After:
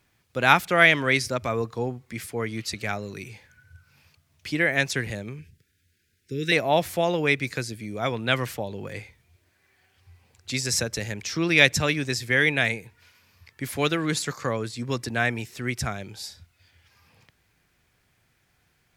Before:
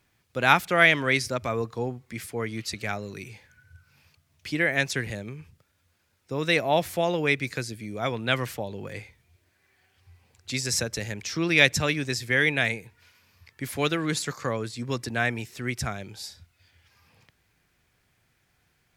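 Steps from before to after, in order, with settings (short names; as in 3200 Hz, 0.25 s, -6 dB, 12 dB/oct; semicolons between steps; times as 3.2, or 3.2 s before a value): 5.39–6.52 elliptic band-stop 430–1600 Hz, stop band 40 dB; gain +1.5 dB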